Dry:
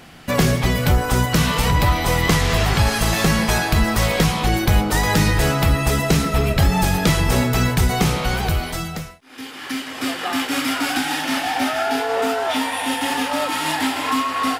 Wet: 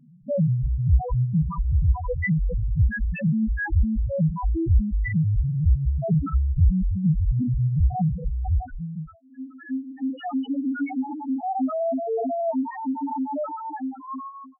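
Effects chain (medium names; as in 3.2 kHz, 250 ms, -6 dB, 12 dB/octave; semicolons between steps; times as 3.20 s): fade out at the end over 1.44 s; loudest bins only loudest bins 1; trim +4.5 dB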